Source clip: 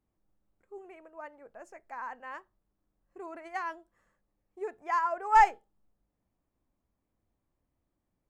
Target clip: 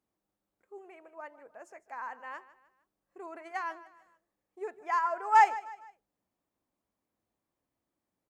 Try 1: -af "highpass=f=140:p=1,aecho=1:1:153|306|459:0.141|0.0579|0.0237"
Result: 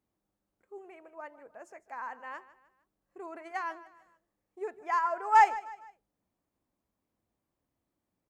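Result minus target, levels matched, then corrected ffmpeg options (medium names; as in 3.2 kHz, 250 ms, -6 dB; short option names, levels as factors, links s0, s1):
125 Hz band +5.0 dB
-af "highpass=f=310:p=1,aecho=1:1:153|306|459:0.141|0.0579|0.0237"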